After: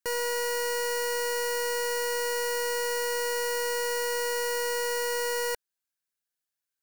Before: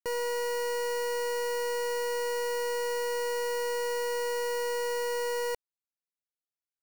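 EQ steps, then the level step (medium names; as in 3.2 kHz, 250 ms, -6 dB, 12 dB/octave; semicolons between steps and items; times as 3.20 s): peaking EQ 1.6 kHz +10 dB 0.26 oct; treble shelf 2.8 kHz +8 dB; 0.0 dB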